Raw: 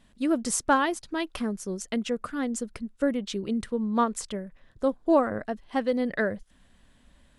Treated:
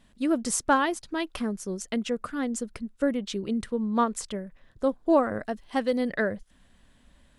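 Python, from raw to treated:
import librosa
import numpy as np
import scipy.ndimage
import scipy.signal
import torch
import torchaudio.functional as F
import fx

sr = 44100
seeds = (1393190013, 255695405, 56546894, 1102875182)

y = fx.high_shelf(x, sr, hz=4300.0, db=7.5, at=(5.29, 6.12))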